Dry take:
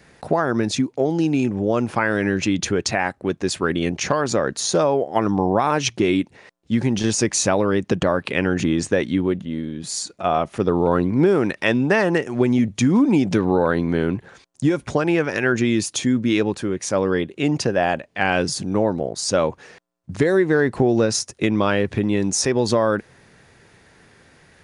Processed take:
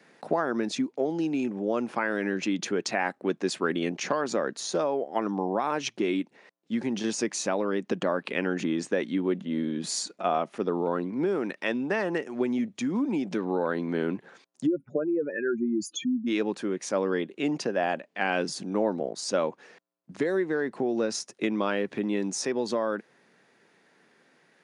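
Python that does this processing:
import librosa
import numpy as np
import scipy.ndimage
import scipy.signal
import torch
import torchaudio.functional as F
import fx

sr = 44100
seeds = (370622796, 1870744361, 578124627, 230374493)

y = fx.spec_expand(x, sr, power=2.9, at=(14.65, 16.26), fade=0.02)
y = scipy.signal.sosfilt(scipy.signal.butter(4, 190.0, 'highpass', fs=sr, output='sos'), y)
y = fx.high_shelf(y, sr, hz=7500.0, db=-8.5)
y = fx.rider(y, sr, range_db=10, speed_s=0.5)
y = F.gain(torch.from_numpy(y), -7.5).numpy()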